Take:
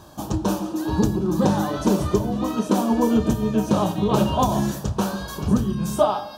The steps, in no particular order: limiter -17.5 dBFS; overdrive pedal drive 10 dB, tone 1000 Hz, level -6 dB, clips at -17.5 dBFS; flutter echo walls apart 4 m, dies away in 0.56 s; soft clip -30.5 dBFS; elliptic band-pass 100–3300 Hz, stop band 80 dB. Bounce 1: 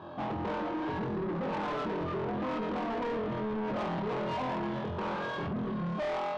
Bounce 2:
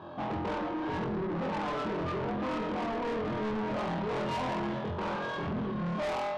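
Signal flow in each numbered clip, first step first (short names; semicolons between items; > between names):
flutter echo > limiter > overdrive pedal > elliptic band-pass > soft clip; elliptic band-pass > limiter > overdrive pedal > flutter echo > soft clip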